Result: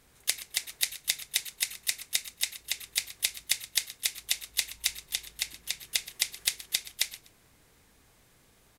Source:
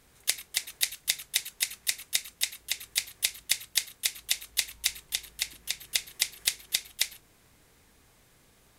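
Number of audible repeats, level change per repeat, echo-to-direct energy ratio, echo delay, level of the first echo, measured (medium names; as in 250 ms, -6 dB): 2, -13.0 dB, -17.5 dB, 124 ms, -17.5 dB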